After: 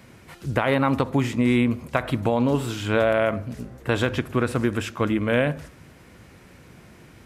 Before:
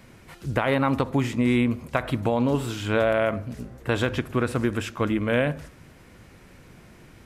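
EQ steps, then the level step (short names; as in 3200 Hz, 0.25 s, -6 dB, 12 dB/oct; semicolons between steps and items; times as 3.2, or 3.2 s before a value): HPF 49 Hz; +1.5 dB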